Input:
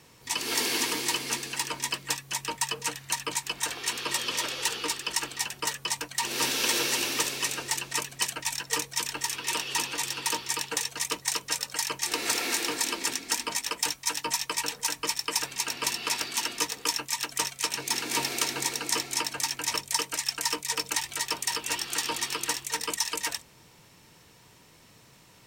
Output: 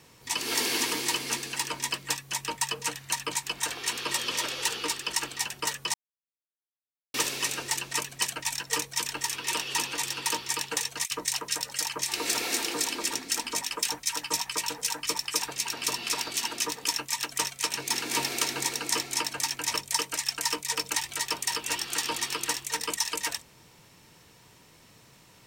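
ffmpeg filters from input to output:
-filter_complex "[0:a]asettb=1/sr,asplit=3[s0][s1][s2];[s0]atrim=end=11.054[s3];[s1]atrim=start=11.05:end=16.88,asetpts=PTS-STARTPTS,afade=t=in:d=0.004:c=qsin,afade=t=out:st=5.826:d=0.004:c=qsin,acrossover=split=1600[s4][s5];[s4]adelay=60[s6];[s6][s5]amix=inputs=2:normalize=0,atrim=end_sample=257103[s7];[s2]atrim=start=16.876[s8];[s3][s7]acrossfade=d=0.004:c1=hsin:c2=qsin[s9];[s9][s8]acrossfade=d=0.004:c1=qsin:c2=hsin,asplit=3[s10][s11][s12];[s10]atrim=end=5.94,asetpts=PTS-STARTPTS,afade=t=out:st=5.936:d=0.004:c=hsin[s13];[s11]atrim=start=5.94:end=7.14,asetpts=PTS-STARTPTS,volume=0[s14];[s12]atrim=start=7.14,asetpts=PTS-STARTPTS,afade=t=in:d=0.004:c=hsin[s15];[s13][s14][s15]concat=n=3:v=0:a=1"

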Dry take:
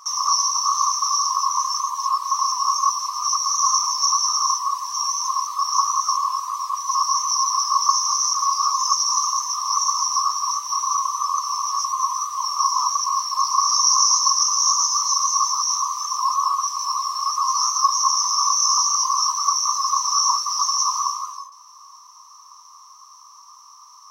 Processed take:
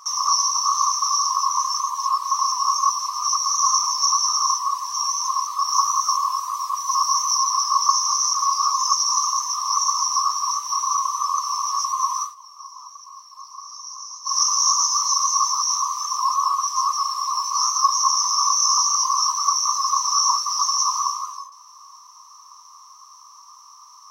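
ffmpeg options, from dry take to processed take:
-filter_complex "[0:a]asettb=1/sr,asplit=3[s0][s1][s2];[s0]atrim=end=5.684[s3];[s1]atrim=start=5.68:end=7.38,asetpts=PTS-STARTPTS,afade=t=in:d=0.004:c=qsin,afade=t=out:st=1.696:d=0.004:c=qsin,highshelf=f=11000:g=7[s4];[s2]atrim=start=7.376[s5];[s3][s4]acrossfade=d=0.004:c1=hsin:c2=qsin[s6];[s6][s5]acrossfade=d=0.004:c1=qsin:c2=hsin,asplit=5[s7][s8][s9][s10][s11];[s7]atrim=end=12.35,asetpts=PTS-STARTPTS,afade=t=out:st=12.21:d=0.14:silence=0.105925[s12];[s8]atrim=start=12.35:end=14.24,asetpts=PTS-STARTPTS,volume=0.106[s13];[s9]atrim=start=14.24:end=16.762,asetpts=PTS-STARTPTS,afade=t=in:d=0.14:silence=0.105925[s14];[s10]atrim=start=16.758:end=17.532,asetpts=PTS-STARTPTS,areverse[s15];[s11]atrim=start=17.528[s16];[s12][s13][s14]concat=n=3:v=0:a=1[s17];[s17][s15]acrossfade=d=0.004:c1=hsin:c2=hsin[s18];[s18][s16]acrossfade=d=0.004:c1=hsin:c2=hsin"

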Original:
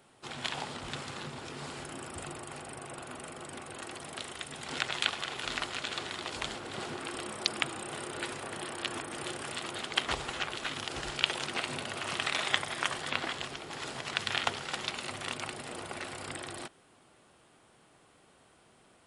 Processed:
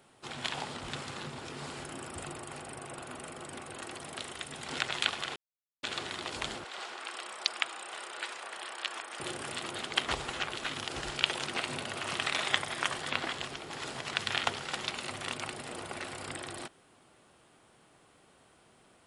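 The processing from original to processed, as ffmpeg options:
-filter_complex "[0:a]asettb=1/sr,asplit=3[s0][s1][s2];[s0]atrim=end=6.644[s3];[s1]atrim=start=6.64:end=9.2,asetpts=PTS-STARTPTS,afade=t=in:d=0.004:c=qsin,afade=t=out:st=2.556:d=0.004:c=qsin,highpass=720,lowpass=7900[s4];[s2]atrim=start=9.196[s5];[s3][s4]acrossfade=d=0.004:c1=hsin:c2=qsin[s6];[s6][s5]acrossfade=d=0.004:c1=qsin:c2=hsin,asplit=3[s7][s8][s9];[s7]atrim=end=5.36,asetpts=PTS-STARTPTS,afade=t=out:st=5.356:d=0.004:c=hsin[s10];[s8]atrim=start=5.36:end=5.83,asetpts=PTS-STARTPTS,volume=0[s11];[s9]atrim=start=5.83,asetpts=PTS-STARTPTS,afade=t=in:d=0.004:c=hsin[s12];[s10][s11][s12]concat=n=3:v=0:a=1"

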